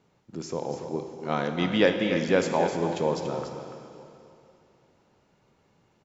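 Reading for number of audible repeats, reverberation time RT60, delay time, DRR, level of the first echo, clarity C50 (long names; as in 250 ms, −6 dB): 1, 2.9 s, 287 ms, 4.0 dB, −9.0 dB, 4.5 dB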